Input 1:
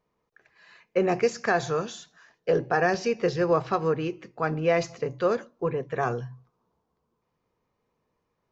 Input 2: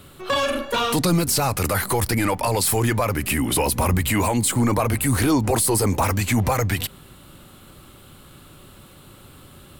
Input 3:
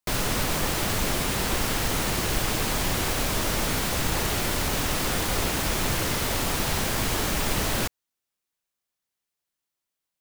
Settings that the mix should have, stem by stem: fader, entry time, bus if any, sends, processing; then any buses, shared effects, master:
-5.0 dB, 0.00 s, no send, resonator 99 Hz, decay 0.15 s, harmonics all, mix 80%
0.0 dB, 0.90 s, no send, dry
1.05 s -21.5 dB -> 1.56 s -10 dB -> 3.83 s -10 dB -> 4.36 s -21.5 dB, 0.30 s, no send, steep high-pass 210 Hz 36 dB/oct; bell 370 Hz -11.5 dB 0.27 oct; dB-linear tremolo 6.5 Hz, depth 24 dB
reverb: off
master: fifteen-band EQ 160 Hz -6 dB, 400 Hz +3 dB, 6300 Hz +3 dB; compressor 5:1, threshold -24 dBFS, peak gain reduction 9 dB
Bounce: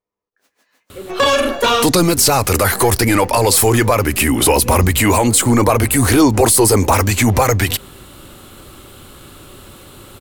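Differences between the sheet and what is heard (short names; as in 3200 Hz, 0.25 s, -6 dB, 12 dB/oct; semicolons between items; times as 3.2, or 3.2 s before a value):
stem 2 0.0 dB -> +7.5 dB; stem 3 -21.5 dB -> -31.5 dB; master: missing compressor 5:1, threshold -24 dBFS, peak gain reduction 9 dB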